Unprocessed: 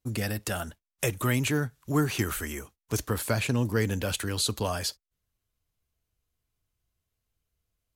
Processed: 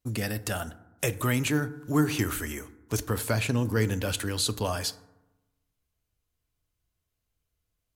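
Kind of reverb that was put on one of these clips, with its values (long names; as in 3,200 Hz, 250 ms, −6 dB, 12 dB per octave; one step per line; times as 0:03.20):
feedback delay network reverb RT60 1 s, low-frequency decay 1.2×, high-frequency decay 0.4×, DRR 14 dB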